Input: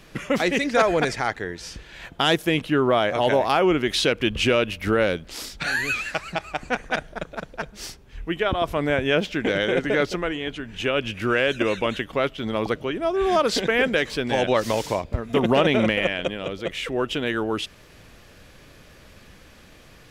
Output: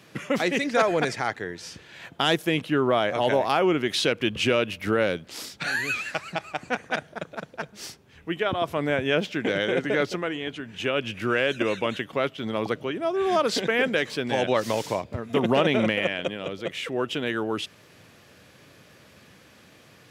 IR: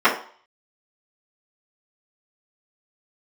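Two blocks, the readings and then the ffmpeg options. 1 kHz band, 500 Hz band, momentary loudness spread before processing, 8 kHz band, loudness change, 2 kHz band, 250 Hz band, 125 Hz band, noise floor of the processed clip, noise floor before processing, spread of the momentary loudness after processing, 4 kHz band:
-2.5 dB, -2.5 dB, 12 LU, -2.5 dB, -2.5 dB, -2.5 dB, -2.5 dB, -3.0 dB, -54 dBFS, -49 dBFS, 12 LU, -2.5 dB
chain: -af "highpass=f=95:w=0.5412,highpass=f=95:w=1.3066,volume=-2.5dB"

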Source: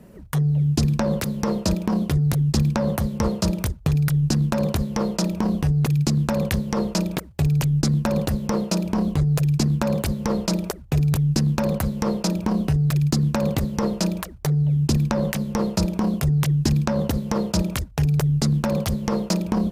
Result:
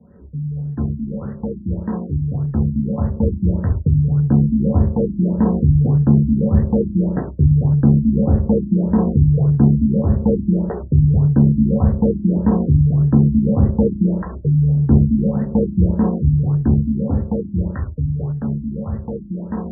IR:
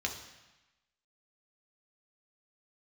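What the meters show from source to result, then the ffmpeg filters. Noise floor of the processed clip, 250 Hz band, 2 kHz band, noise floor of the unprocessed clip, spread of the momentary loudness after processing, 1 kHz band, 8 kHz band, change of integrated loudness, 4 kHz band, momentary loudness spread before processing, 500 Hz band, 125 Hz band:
-32 dBFS, +6.0 dB, under -10 dB, -40 dBFS, 11 LU, -3.0 dB, under -40 dB, +5.0 dB, under -40 dB, 4 LU, +3.0 dB, +5.0 dB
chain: -filter_complex "[0:a]acrossover=split=880[a][b];[a]dynaudnorm=f=390:g=17:m=14dB[c];[c][b]amix=inputs=2:normalize=0[d];[1:a]atrim=start_sample=2205,afade=t=out:st=0.16:d=0.01,atrim=end_sample=7497,asetrate=43659,aresample=44100[e];[d][e]afir=irnorm=-1:irlink=0,afftfilt=real='re*lt(b*sr/1024,320*pow(2000/320,0.5+0.5*sin(2*PI*1.7*pts/sr)))':imag='im*lt(b*sr/1024,320*pow(2000/320,0.5+0.5*sin(2*PI*1.7*pts/sr)))':win_size=1024:overlap=0.75,volume=-5dB"

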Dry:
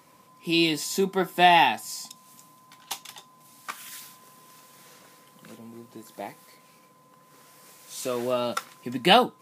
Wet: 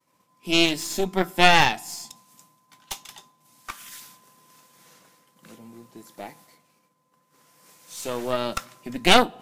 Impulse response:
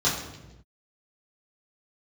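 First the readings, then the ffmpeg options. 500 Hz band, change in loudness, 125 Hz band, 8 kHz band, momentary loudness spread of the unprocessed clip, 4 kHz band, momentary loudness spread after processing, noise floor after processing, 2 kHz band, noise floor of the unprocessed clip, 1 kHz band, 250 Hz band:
0.0 dB, +2.5 dB, +2.5 dB, +3.0 dB, 22 LU, +3.0 dB, 23 LU, -68 dBFS, +4.0 dB, -57 dBFS, -0.5 dB, +1.0 dB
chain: -filter_complex "[0:a]equalizer=f=6.2k:t=o:w=0.77:g=2,agate=range=-33dB:threshold=-48dB:ratio=3:detection=peak,asplit=2[a][b];[1:a]atrim=start_sample=2205[c];[b][c]afir=irnorm=-1:irlink=0,volume=-32dB[d];[a][d]amix=inputs=2:normalize=0,aeval=exprs='0.596*(cos(1*acos(clip(val(0)/0.596,-1,1)))-cos(1*PI/2))+0.237*(cos(4*acos(clip(val(0)/0.596,-1,1)))-cos(4*PI/2))':c=same,volume=-1dB"

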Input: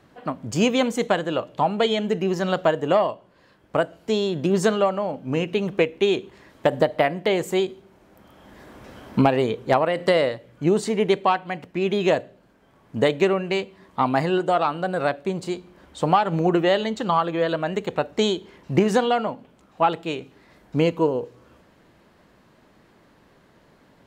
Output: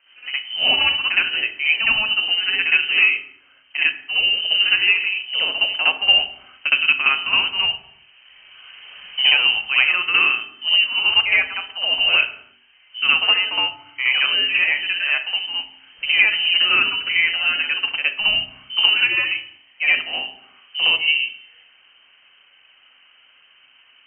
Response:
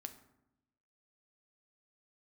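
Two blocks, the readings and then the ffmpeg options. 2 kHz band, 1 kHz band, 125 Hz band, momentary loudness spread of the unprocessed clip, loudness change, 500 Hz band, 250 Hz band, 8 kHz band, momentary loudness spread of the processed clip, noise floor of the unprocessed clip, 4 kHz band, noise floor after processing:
+15.0 dB, -7.5 dB, under -20 dB, 9 LU, +6.0 dB, -19.0 dB, under -20 dB, under -40 dB, 10 LU, -57 dBFS, +17.0 dB, -54 dBFS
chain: -filter_complex "[0:a]lowpass=f=2.7k:t=q:w=0.5098,lowpass=f=2.7k:t=q:w=0.6013,lowpass=f=2.7k:t=q:w=0.9,lowpass=f=2.7k:t=q:w=2.563,afreqshift=-3200,bandreject=f=48.02:t=h:w=4,bandreject=f=96.04:t=h:w=4,bandreject=f=144.06:t=h:w=4,bandreject=f=192.08:t=h:w=4,bandreject=f=240.1:t=h:w=4,bandreject=f=288.12:t=h:w=4,bandreject=f=336.14:t=h:w=4,bandreject=f=384.16:t=h:w=4,bandreject=f=432.18:t=h:w=4,asplit=2[a][b];[1:a]atrim=start_sample=2205,afade=t=out:st=0.41:d=0.01,atrim=end_sample=18522,adelay=64[c];[b][c]afir=irnorm=-1:irlink=0,volume=11dB[d];[a][d]amix=inputs=2:normalize=0,volume=-4.5dB"

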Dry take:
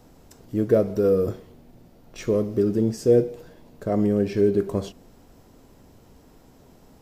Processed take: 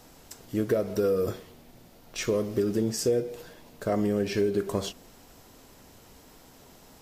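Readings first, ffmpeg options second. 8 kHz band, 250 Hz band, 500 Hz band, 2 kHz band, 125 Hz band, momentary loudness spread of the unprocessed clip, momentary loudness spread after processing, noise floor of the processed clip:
+7.0 dB, -6.0 dB, -5.5 dB, +3.5 dB, -6.5 dB, 13 LU, 13 LU, -54 dBFS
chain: -af "tiltshelf=f=750:g=-5.5,acompressor=threshold=-23dB:ratio=6,volume=1.5dB" -ar 44100 -c:a libvorbis -b:a 48k

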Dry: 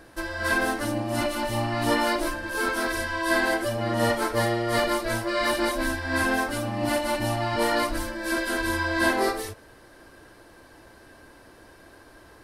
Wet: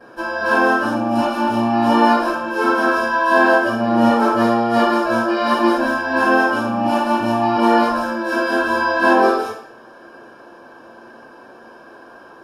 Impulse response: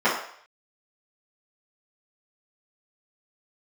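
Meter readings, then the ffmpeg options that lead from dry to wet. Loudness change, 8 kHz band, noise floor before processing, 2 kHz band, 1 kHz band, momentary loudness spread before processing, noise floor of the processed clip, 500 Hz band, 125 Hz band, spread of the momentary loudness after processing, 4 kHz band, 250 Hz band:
+9.0 dB, -6.0 dB, -52 dBFS, +7.0 dB, +12.0 dB, 5 LU, -43 dBFS, +8.5 dB, -1.0 dB, 5 LU, +2.0 dB, +10.5 dB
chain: -filter_complex "[0:a]asuperstop=centerf=2000:order=4:qfactor=4.2[a];[1:a]atrim=start_sample=2205[b];[a][b]afir=irnorm=-1:irlink=0,volume=-9.5dB"

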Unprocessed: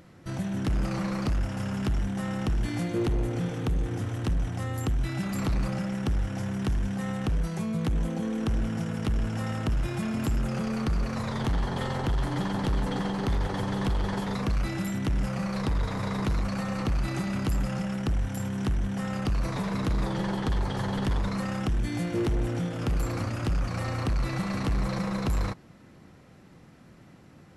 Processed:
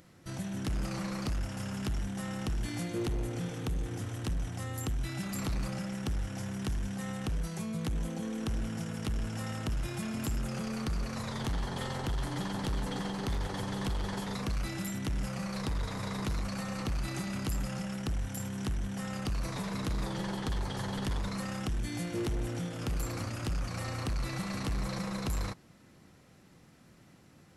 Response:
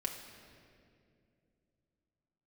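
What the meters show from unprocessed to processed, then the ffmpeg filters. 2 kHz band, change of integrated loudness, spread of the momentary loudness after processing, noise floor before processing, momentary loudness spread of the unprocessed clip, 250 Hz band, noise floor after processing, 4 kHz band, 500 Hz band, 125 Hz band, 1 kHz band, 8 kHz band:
-4.5 dB, -6.0 dB, 2 LU, -52 dBFS, 2 LU, -6.5 dB, -59 dBFS, -1.5 dB, -6.5 dB, -6.5 dB, -6.0 dB, +1.5 dB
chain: -af "highshelf=f=3.6k:g=9.5,volume=-6.5dB"

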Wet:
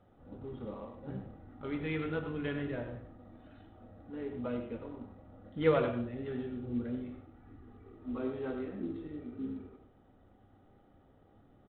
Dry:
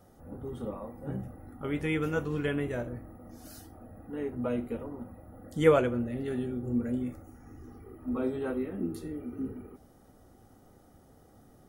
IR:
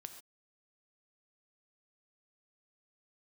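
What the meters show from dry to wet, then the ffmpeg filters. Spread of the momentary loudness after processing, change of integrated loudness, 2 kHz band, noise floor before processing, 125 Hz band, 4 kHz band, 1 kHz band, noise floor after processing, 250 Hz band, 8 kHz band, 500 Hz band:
21 LU, -5.5 dB, -5.0 dB, -59 dBFS, -5.0 dB, -4.5 dB, -4.5 dB, -63 dBFS, -5.0 dB, n/a, -5.0 dB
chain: -filter_complex "[0:a]aecho=1:1:97:0.266[a];[1:a]atrim=start_sample=2205[b];[a][b]afir=irnorm=-1:irlink=0" -ar 8000 -c:a adpcm_ima_wav

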